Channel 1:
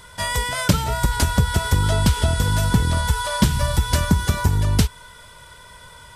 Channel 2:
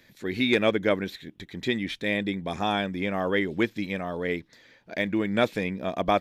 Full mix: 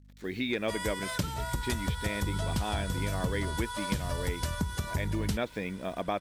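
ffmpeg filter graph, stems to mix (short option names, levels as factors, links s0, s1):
-filter_complex "[0:a]adelay=500,volume=0.316[s0];[1:a]equalizer=f=11000:t=o:w=0.69:g=-7.5,acrusher=bits=7:mix=0:aa=0.5,aeval=exprs='val(0)+0.00355*(sin(2*PI*50*n/s)+sin(2*PI*2*50*n/s)/2+sin(2*PI*3*50*n/s)/3+sin(2*PI*4*50*n/s)/4+sin(2*PI*5*50*n/s)/5)':c=same,volume=0.562[s1];[s0][s1]amix=inputs=2:normalize=0,acompressor=threshold=0.0316:ratio=2"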